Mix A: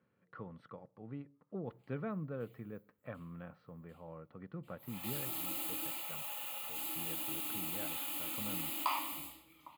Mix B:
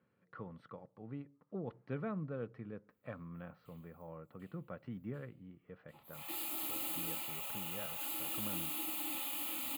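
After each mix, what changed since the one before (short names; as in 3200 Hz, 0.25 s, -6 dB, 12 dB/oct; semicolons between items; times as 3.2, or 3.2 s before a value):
background: entry +1.25 s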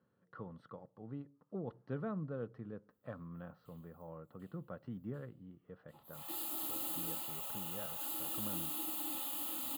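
master: add bell 2300 Hz -13.5 dB 0.42 oct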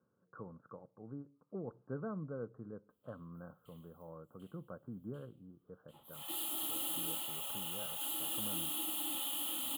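speech: add rippled Chebyshev low-pass 1600 Hz, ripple 3 dB; master: add thirty-one-band EQ 3150 Hz +12 dB, 5000 Hz -7 dB, 10000 Hz +7 dB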